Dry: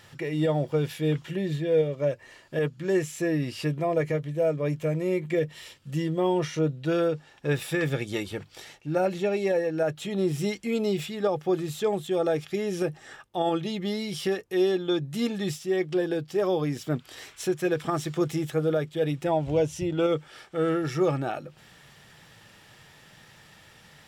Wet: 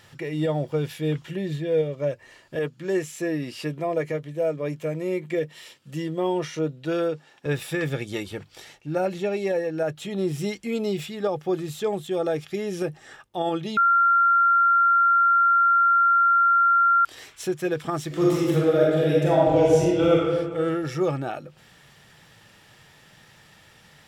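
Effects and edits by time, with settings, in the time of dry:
2.55–7.46 HPF 170 Hz
13.77–17.05 bleep 1380 Hz -15 dBFS
18.07–20.18 reverb throw, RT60 1.6 s, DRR -5.5 dB

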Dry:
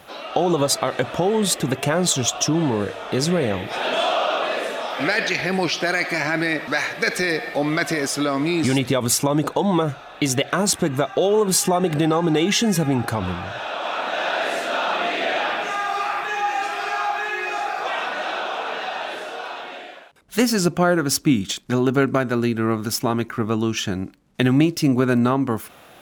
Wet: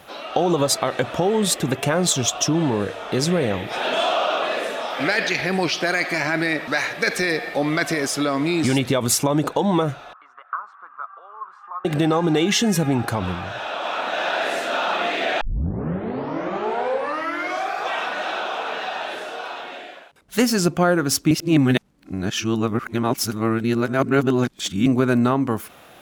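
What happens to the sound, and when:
10.13–11.85 Butterworth band-pass 1200 Hz, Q 3.6
15.41 tape start 2.39 s
21.31–24.86 reverse

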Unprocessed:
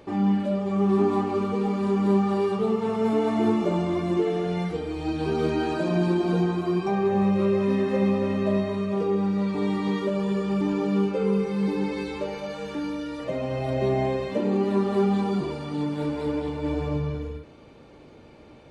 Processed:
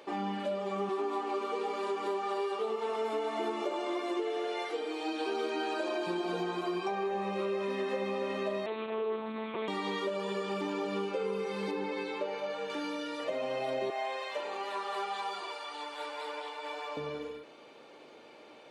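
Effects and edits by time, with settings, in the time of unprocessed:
0.89–6.07 brick-wall FIR high-pass 220 Hz
8.66–9.68 monotone LPC vocoder at 8 kHz 220 Hz
11.71–12.7 high shelf 3600 Hz -10.5 dB
13.9–16.97 Chebyshev high-pass 890 Hz
whole clip: HPF 450 Hz 12 dB/oct; bell 3200 Hz +3 dB 0.72 oct; compressor, threshold -30 dBFS

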